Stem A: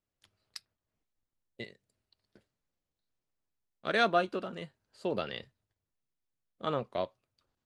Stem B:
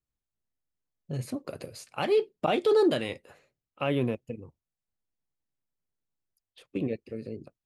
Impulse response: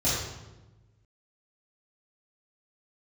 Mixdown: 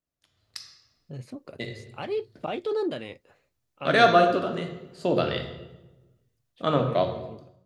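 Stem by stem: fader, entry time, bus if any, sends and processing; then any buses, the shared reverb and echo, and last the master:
−4.0 dB, 0.00 s, send −15.5 dB, no processing
−16.0 dB, 0.00 s, no send, Bessel low-pass filter 5,900 Hz, order 2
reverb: on, RT60 1.1 s, pre-delay 3 ms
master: automatic gain control gain up to 10.5 dB

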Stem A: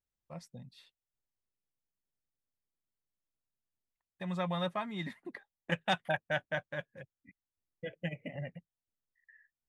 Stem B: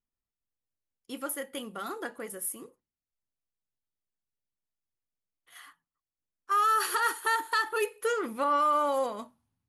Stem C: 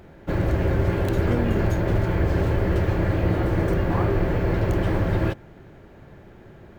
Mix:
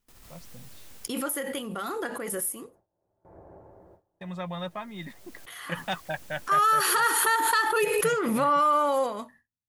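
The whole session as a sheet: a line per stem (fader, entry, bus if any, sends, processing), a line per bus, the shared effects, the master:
−0.5 dB, 0.00 s, no send, no processing
+3.0 dB, 0.00 s, no send, background raised ahead of every attack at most 22 dB per second
−13.5 dB, 1.15 s, no send, transistor ladder low-pass 940 Hz, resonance 45%; spectral tilt +3.5 dB per octave; automatic ducking −16 dB, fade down 1.30 s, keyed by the second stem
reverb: not used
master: noise gate with hold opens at −45 dBFS

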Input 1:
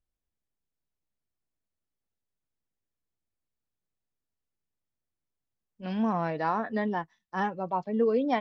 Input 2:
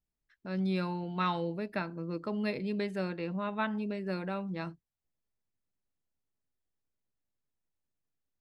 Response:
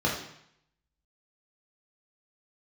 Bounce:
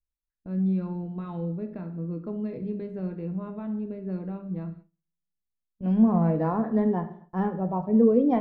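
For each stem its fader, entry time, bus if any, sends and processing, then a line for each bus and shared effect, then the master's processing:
−4.5 dB, 0.00 s, send −17 dB, no processing
−9.0 dB, 0.00 s, send −16.5 dB, brickwall limiter −25 dBFS, peak gain reduction 7 dB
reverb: on, RT60 0.70 s, pre-delay 3 ms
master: noise gate with hold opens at −44 dBFS; spectral tilt −4.5 dB per octave; linearly interpolated sample-rate reduction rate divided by 2×

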